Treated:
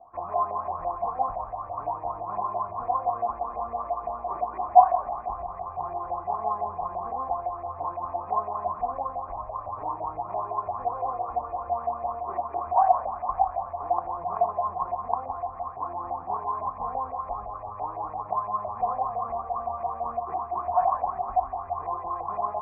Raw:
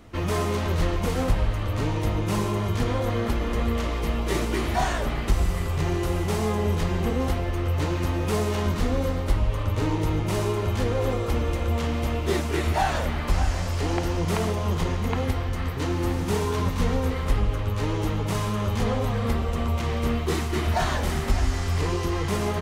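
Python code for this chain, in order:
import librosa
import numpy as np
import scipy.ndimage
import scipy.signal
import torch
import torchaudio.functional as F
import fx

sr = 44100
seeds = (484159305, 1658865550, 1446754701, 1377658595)

y = fx.filter_lfo_lowpass(x, sr, shape='saw_up', hz=5.9, low_hz=640.0, high_hz=2100.0, q=6.3)
y = fx.formant_cascade(y, sr, vowel='a')
y = y * 10.0 ** (4.0 / 20.0)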